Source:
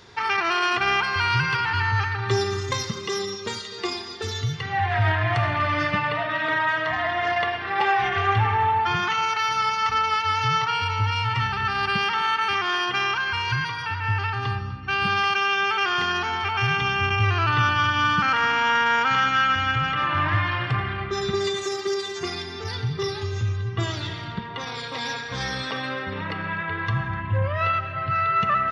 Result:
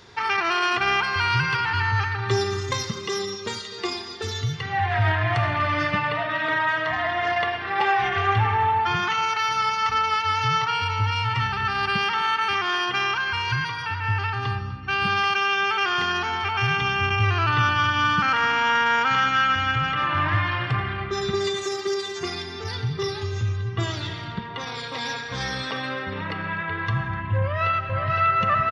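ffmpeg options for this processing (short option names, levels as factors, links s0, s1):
-filter_complex "[0:a]asplit=2[s0][s1];[s1]afade=t=in:st=27.38:d=0.01,afade=t=out:st=28.09:d=0.01,aecho=0:1:510|1020|1530|2040|2550|3060|3570|4080|4590:0.668344|0.401006|0.240604|0.144362|0.0866174|0.0519704|0.0311823|0.0187094|0.0112256[s2];[s0][s2]amix=inputs=2:normalize=0"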